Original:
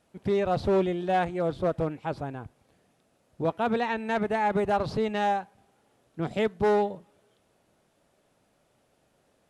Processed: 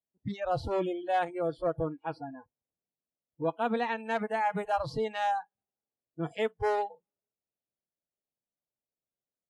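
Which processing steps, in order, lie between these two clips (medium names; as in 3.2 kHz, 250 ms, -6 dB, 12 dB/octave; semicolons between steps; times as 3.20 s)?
spectral noise reduction 30 dB; level-controlled noise filter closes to 850 Hz, open at -27.5 dBFS; trim -2.5 dB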